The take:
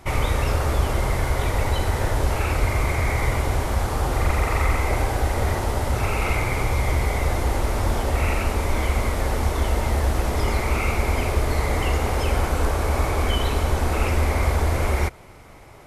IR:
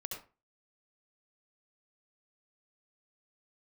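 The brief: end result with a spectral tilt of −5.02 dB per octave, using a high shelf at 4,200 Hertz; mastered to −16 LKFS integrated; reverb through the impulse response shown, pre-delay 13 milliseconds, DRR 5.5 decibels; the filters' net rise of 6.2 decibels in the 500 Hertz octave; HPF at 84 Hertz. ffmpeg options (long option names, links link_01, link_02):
-filter_complex "[0:a]highpass=84,equalizer=frequency=500:width_type=o:gain=7.5,highshelf=frequency=4200:gain=3,asplit=2[link_01][link_02];[1:a]atrim=start_sample=2205,adelay=13[link_03];[link_02][link_03]afir=irnorm=-1:irlink=0,volume=-4.5dB[link_04];[link_01][link_04]amix=inputs=2:normalize=0,volume=5.5dB"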